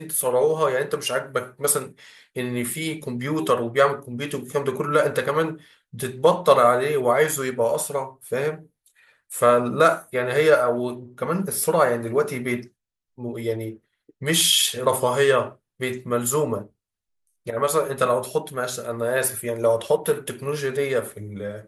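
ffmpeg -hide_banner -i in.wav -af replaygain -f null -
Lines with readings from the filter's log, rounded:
track_gain = +1.2 dB
track_peak = 0.503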